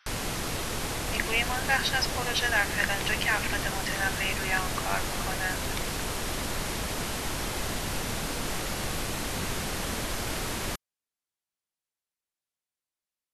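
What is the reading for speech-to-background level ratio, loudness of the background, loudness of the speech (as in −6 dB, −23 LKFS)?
2.0 dB, −31.5 LKFS, −29.5 LKFS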